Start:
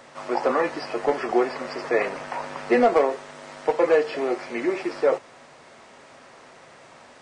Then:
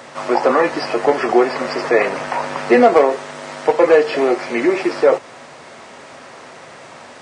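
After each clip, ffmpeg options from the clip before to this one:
-filter_complex "[0:a]highpass=65,asplit=2[a][b];[b]alimiter=limit=-19dB:level=0:latency=1:release=171,volume=-3dB[c];[a][c]amix=inputs=2:normalize=0,volume=5.5dB"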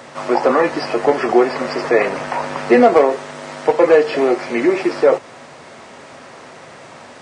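-af "lowshelf=f=340:g=4,volume=-1dB"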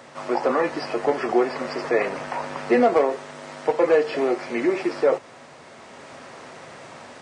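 -af "dynaudnorm=f=360:g=3:m=4.5dB,volume=-7.5dB"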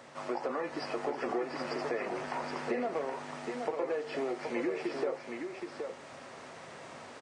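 -af "acompressor=threshold=-24dB:ratio=6,aecho=1:1:772:0.531,volume=-7dB"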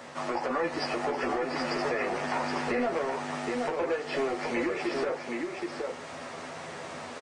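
-filter_complex "[0:a]acrossover=split=1000[a][b];[a]asoftclip=type=tanh:threshold=-34dB[c];[c][b]amix=inputs=2:normalize=0,asplit=2[d][e];[e]adelay=12,volume=-5dB[f];[d][f]amix=inputs=2:normalize=0,volume=6.5dB"

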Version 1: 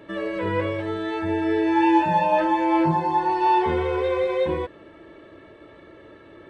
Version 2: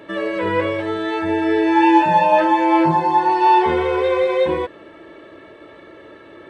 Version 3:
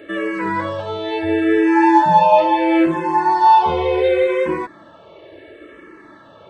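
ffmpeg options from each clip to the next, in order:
-af "lowshelf=f=170:g=-10,volume=6.5dB"
-filter_complex "[0:a]asplit=2[a][b];[b]afreqshift=-0.72[c];[a][c]amix=inputs=2:normalize=1,volume=3dB"

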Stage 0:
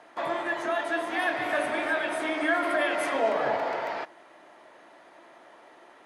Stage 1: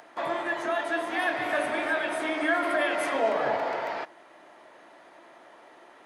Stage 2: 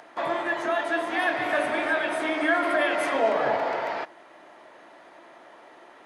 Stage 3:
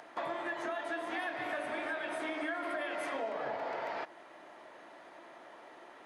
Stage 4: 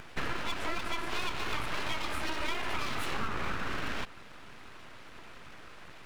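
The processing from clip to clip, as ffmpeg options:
-af "acompressor=mode=upward:threshold=-49dB:ratio=2.5"
-af "highshelf=f=10k:g=-6.5,volume=2.5dB"
-af "acompressor=threshold=-31dB:ratio=6,volume=-3.5dB"
-af "aeval=exprs='abs(val(0))':c=same,volume=6dB"

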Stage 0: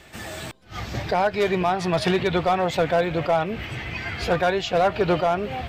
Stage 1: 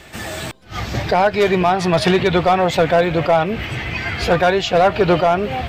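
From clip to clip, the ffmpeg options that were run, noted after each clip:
-af "acontrast=81"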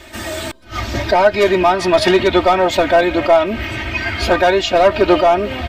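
-af "aecho=1:1:3.2:0.94"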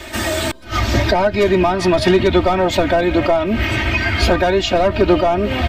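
-filter_complex "[0:a]acrossover=split=260[a][b];[b]acompressor=threshold=-24dB:ratio=3[c];[a][c]amix=inputs=2:normalize=0,volume=6.5dB"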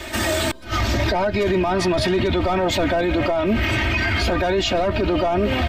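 -af "alimiter=limit=-12.5dB:level=0:latency=1:release=10"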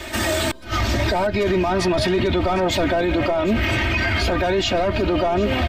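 -af "aecho=1:1:753:0.141"

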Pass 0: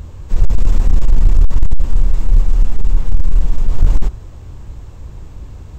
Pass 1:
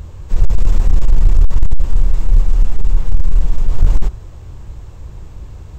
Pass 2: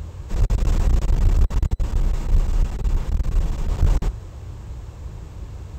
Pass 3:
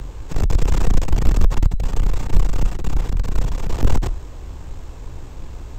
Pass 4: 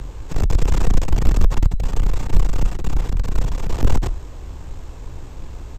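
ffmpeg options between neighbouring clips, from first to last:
-af "equalizer=f=250:t=o:w=0.23:g=-8.5"
-af "highpass=47"
-af "aeval=exprs='0.531*(cos(1*acos(clip(val(0)/0.531,-1,1)))-cos(1*PI/2))+0.133*(cos(4*acos(clip(val(0)/0.531,-1,1)))-cos(4*PI/2))':c=same,afreqshift=-38,volume=3dB"
-af "aresample=32000,aresample=44100"

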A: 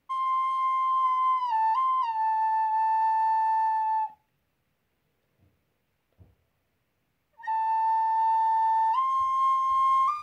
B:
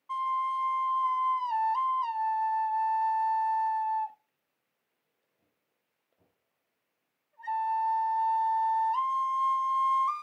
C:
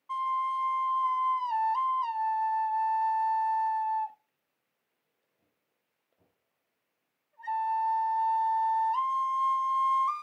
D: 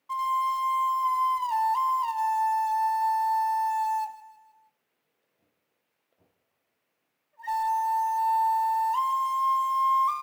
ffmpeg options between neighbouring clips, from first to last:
-af "highpass=310,volume=-3.5dB"
-af anull
-filter_complex "[0:a]asplit=2[a][b];[b]acrusher=bits=2:mode=log:mix=0:aa=0.000001,volume=-9dB[c];[a][c]amix=inputs=2:normalize=0,aecho=1:1:158|316|474|632:0.158|0.0761|0.0365|0.0175"

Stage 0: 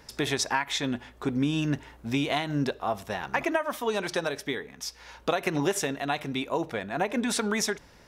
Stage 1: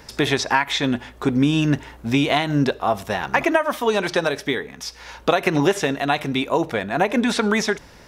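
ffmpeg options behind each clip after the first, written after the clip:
-filter_complex "[0:a]acrossover=split=4800[a][b];[b]acompressor=threshold=-44dB:ratio=4:attack=1:release=60[c];[a][c]amix=inputs=2:normalize=0,volume=8.5dB"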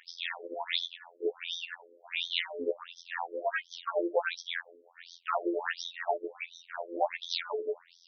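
-af "tremolo=f=7.2:d=0.41,afftfilt=real='hypot(re,im)*cos(PI*b)':imag='0':win_size=2048:overlap=0.75,afftfilt=real='re*between(b*sr/1024,390*pow(4600/390,0.5+0.5*sin(2*PI*1.4*pts/sr))/1.41,390*pow(4600/390,0.5+0.5*sin(2*PI*1.4*pts/sr))*1.41)':imag='im*between(b*sr/1024,390*pow(4600/390,0.5+0.5*sin(2*PI*1.4*pts/sr))/1.41,390*pow(4600/390,0.5+0.5*sin(2*PI*1.4*pts/sr))*1.41)':win_size=1024:overlap=0.75"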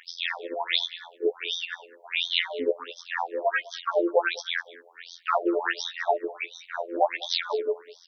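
-af "aecho=1:1:202:0.0891,volume=6.5dB"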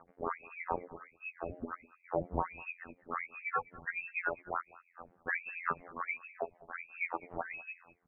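-af "aderivative,crystalizer=i=2.5:c=0,lowpass=f=2.6k:t=q:w=0.5098,lowpass=f=2.6k:t=q:w=0.6013,lowpass=f=2.6k:t=q:w=0.9,lowpass=f=2.6k:t=q:w=2.563,afreqshift=-3000,volume=4.5dB"

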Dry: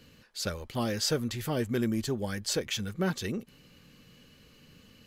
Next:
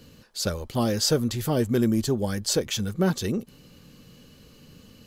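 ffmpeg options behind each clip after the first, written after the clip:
-af "equalizer=f=2.1k:w=1:g=-7.5,volume=7dB"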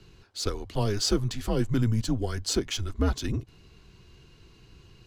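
-af "afreqshift=-110,adynamicsmooth=sensitivity=5.5:basefreq=7k,volume=-2dB"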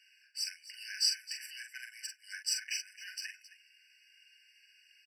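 -filter_complex "[0:a]asplit=2[a][b];[b]aecho=0:1:43|267:0.501|0.168[c];[a][c]amix=inputs=2:normalize=0,afftfilt=real='re*eq(mod(floor(b*sr/1024/1500),2),1)':imag='im*eq(mod(floor(b*sr/1024/1500),2),1)':win_size=1024:overlap=0.75"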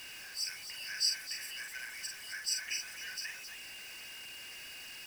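-af "aeval=exprs='val(0)+0.5*0.00944*sgn(val(0))':c=same,volume=-2dB"

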